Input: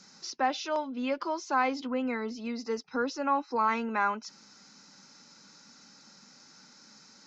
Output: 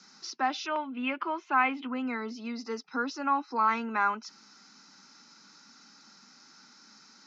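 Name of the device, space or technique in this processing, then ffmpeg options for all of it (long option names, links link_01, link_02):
television speaker: -filter_complex "[0:a]asettb=1/sr,asplit=3[link_01][link_02][link_03];[link_01]atrim=end=0.664[link_04];[link_02]atrim=start=0.66:end=1.92,asetpts=PTS-STARTPTS,afade=type=in:duration=0.004:curve=qsin,afade=type=out:start_time=1.256:duration=0.004:curve=qsin,highshelf=frequency=3700:width_type=q:width=3:gain=-11[link_05];[link_03]atrim=start=1.916[link_06];[link_04][link_05]acrossfade=duration=0.004:curve1=hsin:curve2=qsin[link_07];[link_07][link_06]acrossfade=duration=0.004:curve1=qsin:curve2=hsin,highpass=frequency=160:width=0.5412,highpass=frequency=160:width=1.3066,equalizer=frequency=180:width_type=q:width=4:gain=-4,equalizer=frequency=530:width_type=q:width=4:gain=-10,equalizer=frequency=1300:width_type=q:width=4:gain=4,lowpass=frequency=6600:width=0.5412,lowpass=frequency=6600:width=1.3066"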